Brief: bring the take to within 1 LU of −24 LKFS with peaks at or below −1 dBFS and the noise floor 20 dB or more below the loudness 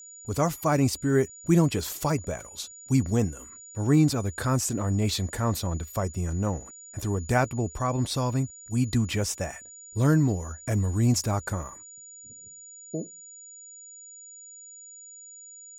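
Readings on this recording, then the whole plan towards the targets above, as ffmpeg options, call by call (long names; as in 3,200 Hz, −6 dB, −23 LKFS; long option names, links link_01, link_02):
interfering tone 6,900 Hz; level of the tone −44 dBFS; integrated loudness −27.0 LKFS; sample peak −9.5 dBFS; target loudness −24.0 LKFS
→ -af "bandreject=frequency=6900:width=30"
-af "volume=3dB"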